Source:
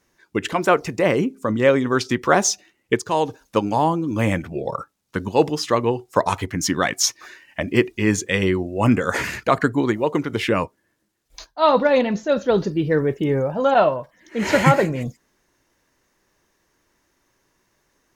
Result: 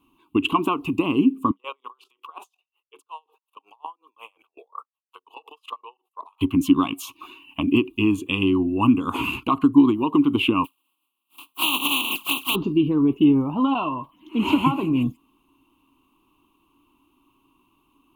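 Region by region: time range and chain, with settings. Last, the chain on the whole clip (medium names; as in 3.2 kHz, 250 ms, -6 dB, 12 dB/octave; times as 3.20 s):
1.51–6.41 s: elliptic high-pass 460 Hz + level held to a coarse grid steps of 18 dB + logarithmic tremolo 5.5 Hz, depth 32 dB
10.64–12.54 s: spectral contrast reduction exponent 0.15 + high-pass 590 Hz 6 dB/octave + touch-sensitive flanger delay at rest 9.3 ms, full sweep at -16.5 dBFS
whole clip: compression 6:1, threshold -20 dBFS; FFT filter 200 Hz 0 dB, 280 Hz +14 dB, 550 Hz -16 dB, 1.1 kHz +11 dB, 1.8 kHz -30 dB, 2.7 kHz +11 dB, 5.5 kHz -22 dB, 11 kHz 0 dB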